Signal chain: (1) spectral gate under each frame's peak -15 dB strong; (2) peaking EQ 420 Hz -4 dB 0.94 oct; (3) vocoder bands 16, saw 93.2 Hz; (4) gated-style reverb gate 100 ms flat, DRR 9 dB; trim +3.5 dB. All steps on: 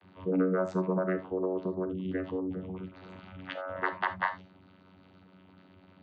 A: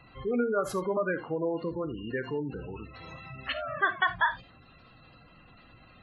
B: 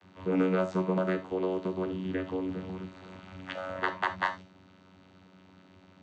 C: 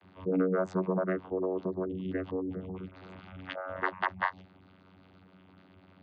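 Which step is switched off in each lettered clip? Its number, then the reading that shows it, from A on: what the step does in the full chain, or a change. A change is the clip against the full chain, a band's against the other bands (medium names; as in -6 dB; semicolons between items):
3, 4 kHz band +8.5 dB; 1, 4 kHz band +4.0 dB; 4, momentary loudness spread change -2 LU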